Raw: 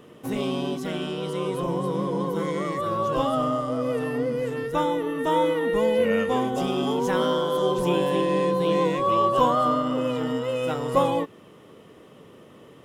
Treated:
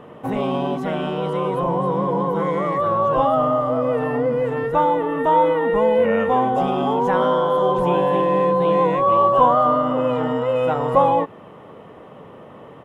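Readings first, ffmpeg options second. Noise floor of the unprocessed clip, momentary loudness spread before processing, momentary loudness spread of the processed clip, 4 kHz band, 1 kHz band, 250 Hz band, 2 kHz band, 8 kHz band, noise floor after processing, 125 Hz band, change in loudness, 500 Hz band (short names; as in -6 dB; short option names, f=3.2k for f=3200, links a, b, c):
-49 dBFS, 7 LU, 6 LU, -3.0 dB, +8.0 dB, +2.5 dB, +3.0 dB, under -10 dB, -42 dBFS, +4.0 dB, +5.5 dB, +5.5 dB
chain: -filter_complex "[0:a]firequalizer=gain_entry='entry(180,0);entry(350,-4);entry(820,7);entry(1200,2);entry(5000,-15)':delay=0.05:min_phase=1,asplit=2[a][b];[b]alimiter=limit=-23.5dB:level=0:latency=1,volume=1.5dB[c];[a][c]amix=inputs=2:normalize=0,equalizer=f=560:w=1.5:g=2.5"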